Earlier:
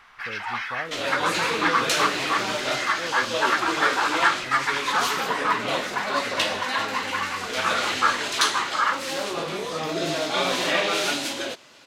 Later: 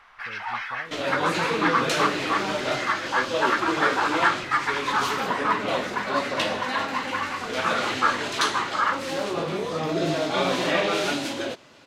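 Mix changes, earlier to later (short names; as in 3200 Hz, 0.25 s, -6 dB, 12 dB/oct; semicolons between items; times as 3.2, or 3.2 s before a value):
speech -10.0 dB; master: add tilt -2 dB/oct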